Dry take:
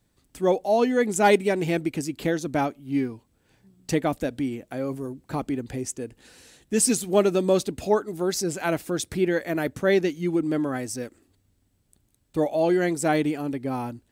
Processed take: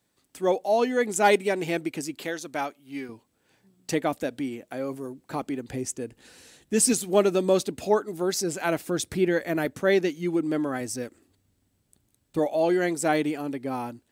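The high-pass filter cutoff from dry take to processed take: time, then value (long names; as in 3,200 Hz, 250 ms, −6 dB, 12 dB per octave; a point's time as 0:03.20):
high-pass filter 6 dB per octave
350 Hz
from 0:02.22 950 Hz
from 0:03.09 290 Hz
from 0:05.68 85 Hz
from 0:06.93 180 Hz
from 0:08.87 60 Hz
from 0:09.65 200 Hz
from 0:10.81 84 Hz
from 0:12.39 250 Hz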